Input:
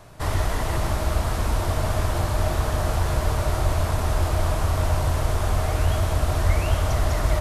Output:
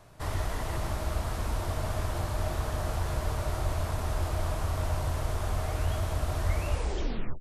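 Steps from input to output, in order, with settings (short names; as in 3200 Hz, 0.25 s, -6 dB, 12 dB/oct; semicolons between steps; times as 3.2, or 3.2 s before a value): tape stop at the end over 0.76 s; gain -8 dB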